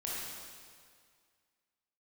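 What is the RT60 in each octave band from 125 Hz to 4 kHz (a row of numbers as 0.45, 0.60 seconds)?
2.0, 2.0, 2.0, 2.0, 1.9, 1.8 seconds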